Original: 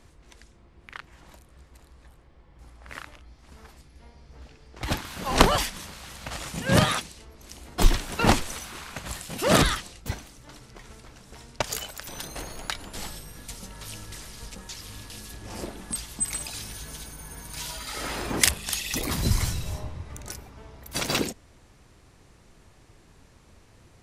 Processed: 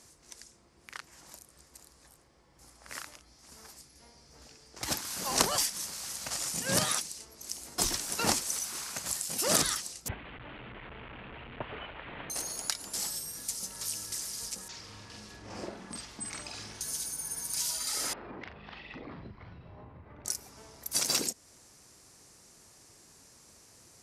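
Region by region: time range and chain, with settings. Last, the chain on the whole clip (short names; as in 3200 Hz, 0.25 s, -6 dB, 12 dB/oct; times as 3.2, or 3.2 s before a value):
10.08–12.3 delta modulation 16 kbps, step -35 dBFS + low shelf 87 Hz +11.5 dB
14.68–16.81 LPF 2500 Hz + doubler 47 ms -3.5 dB
18.13–20.25 Gaussian blur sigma 4 samples + compressor 5:1, threshold -36 dBFS + doubler 40 ms -7.5 dB
whole clip: HPF 210 Hz 6 dB/oct; band shelf 7700 Hz +13 dB; compressor 1.5:1, threshold -31 dBFS; gain -3.5 dB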